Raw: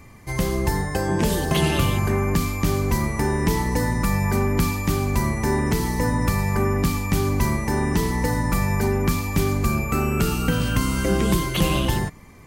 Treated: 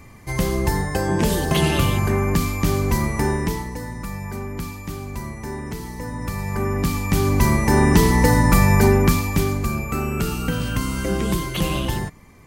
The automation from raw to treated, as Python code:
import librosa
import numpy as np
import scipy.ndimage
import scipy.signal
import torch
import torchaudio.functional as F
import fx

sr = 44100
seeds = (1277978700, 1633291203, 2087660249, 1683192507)

y = fx.gain(x, sr, db=fx.line((3.3, 1.5), (3.76, -9.0), (6.06, -9.0), (6.63, -2.0), (7.8, 7.0), (8.89, 7.0), (9.67, -2.0)))